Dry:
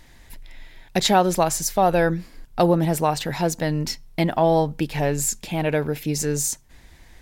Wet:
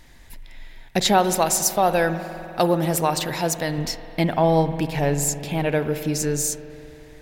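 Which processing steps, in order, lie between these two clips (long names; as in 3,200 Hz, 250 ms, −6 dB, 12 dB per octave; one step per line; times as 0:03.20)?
0:01.18–0:03.78: spectral tilt +1.5 dB per octave
convolution reverb RT60 3.3 s, pre-delay 49 ms, DRR 10 dB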